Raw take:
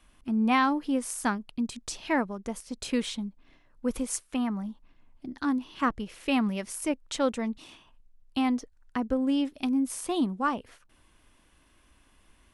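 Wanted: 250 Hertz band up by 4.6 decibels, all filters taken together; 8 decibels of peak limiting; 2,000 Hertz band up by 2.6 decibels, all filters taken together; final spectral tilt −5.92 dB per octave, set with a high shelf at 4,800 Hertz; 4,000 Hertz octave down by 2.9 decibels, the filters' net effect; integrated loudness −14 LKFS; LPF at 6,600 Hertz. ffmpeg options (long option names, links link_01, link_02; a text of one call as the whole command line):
ffmpeg -i in.wav -af "lowpass=6600,equalizer=frequency=250:width_type=o:gain=5,equalizer=frequency=2000:width_type=o:gain=5,equalizer=frequency=4000:width_type=o:gain=-3.5,highshelf=frequency=4800:gain=-5.5,volume=15dB,alimiter=limit=-3.5dB:level=0:latency=1" out.wav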